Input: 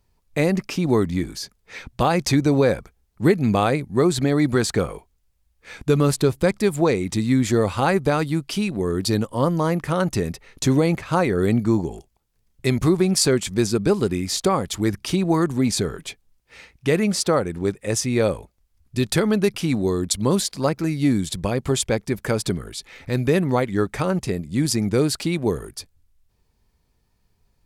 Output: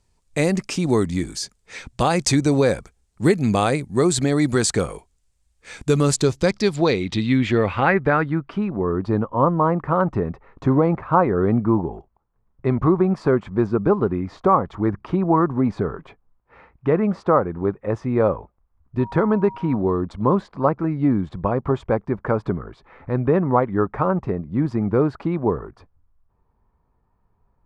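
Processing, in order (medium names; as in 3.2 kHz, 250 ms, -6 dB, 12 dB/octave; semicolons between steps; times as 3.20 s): low-pass sweep 8.2 kHz -> 1.1 kHz, 6.00–8.70 s; 18.98–19.76 s: whistle 950 Hz -35 dBFS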